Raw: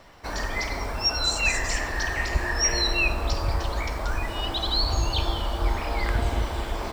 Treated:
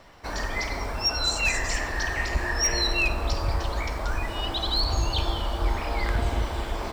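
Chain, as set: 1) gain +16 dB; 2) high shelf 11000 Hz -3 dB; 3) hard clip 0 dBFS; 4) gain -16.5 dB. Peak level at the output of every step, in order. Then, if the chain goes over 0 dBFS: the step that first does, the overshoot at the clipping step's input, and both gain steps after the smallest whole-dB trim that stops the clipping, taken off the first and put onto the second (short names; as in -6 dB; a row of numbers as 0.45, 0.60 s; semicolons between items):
+5.0, +5.0, 0.0, -16.5 dBFS; step 1, 5.0 dB; step 1 +11 dB, step 4 -11.5 dB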